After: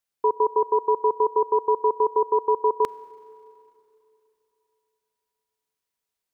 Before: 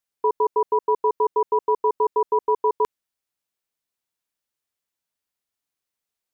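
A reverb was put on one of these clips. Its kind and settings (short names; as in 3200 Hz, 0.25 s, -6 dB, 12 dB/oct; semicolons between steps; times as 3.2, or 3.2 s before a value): Schroeder reverb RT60 3.1 s, combs from 32 ms, DRR 19 dB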